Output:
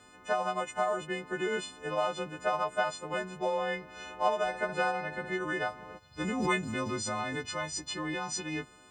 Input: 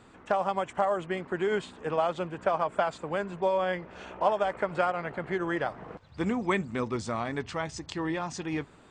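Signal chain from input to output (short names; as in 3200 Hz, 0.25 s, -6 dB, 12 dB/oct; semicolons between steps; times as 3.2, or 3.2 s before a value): frequency quantiser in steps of 3 st; 4.37–5.29 flutter echo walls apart 11.1 m, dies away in 0.36 s; 6.2–7.48 backwards sustainer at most 47 dB/s; gain -4 dB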